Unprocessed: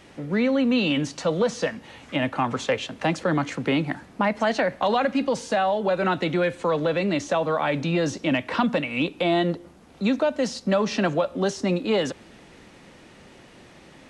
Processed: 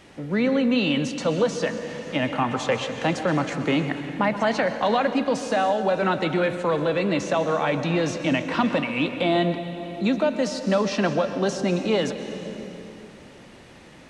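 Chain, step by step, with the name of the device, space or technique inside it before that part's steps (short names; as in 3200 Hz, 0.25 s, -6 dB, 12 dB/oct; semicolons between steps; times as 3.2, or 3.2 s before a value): compressed reverb return (on a send at -4 dB: reverb RT60 2.5 s, pre-delay 0.112 s + compressor, threshold -24 dBFS, peak gain reduction 8.5 dB)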